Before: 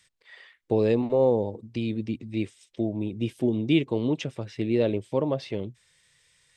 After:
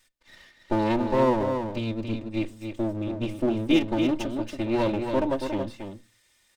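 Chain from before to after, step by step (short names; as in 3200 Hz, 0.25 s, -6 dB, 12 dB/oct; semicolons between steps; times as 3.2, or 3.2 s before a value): minimum comb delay 3.3 ms; echo 0.279 s -6.5 dB; on a send at -16.5 dB: reverb RT60 0.25 s, pre-delay 3 ms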